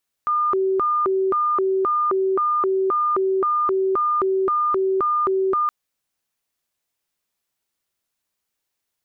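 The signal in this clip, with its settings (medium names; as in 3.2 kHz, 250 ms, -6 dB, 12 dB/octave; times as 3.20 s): siren hi-lo 382–1210 Hz 1.9 per s sine -17 dBFS 5.42 s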